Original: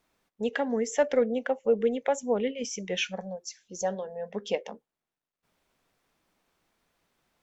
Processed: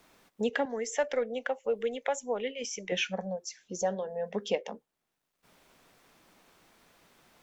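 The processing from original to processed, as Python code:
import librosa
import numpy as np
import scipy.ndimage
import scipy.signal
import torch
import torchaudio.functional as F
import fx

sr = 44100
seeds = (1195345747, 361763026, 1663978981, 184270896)

y = fx.peak_eq(x, sr, hz=150.0, db=-14.0, octaves=2.8, at=(0.65, 2.92))
y = fx.band_squash(y, sr, depth_pct=40)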